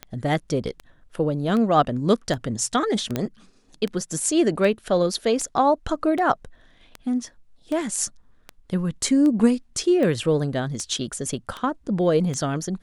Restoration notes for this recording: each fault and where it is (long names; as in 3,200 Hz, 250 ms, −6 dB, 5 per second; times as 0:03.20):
scratch tick 78 rpm −17 dBFS
0:03.16: click −10 dBFS